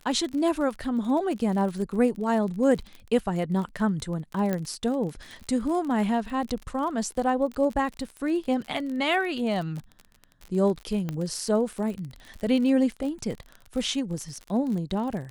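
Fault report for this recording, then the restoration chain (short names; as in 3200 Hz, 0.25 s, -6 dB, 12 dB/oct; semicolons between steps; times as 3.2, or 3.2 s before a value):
crackle 37/s -32 dBFS
4.53 pop -15 dBFS
11.09 pop -18 dBFS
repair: de-click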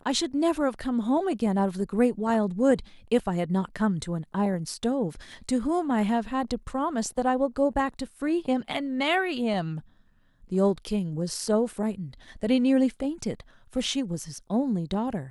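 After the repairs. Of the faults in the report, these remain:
none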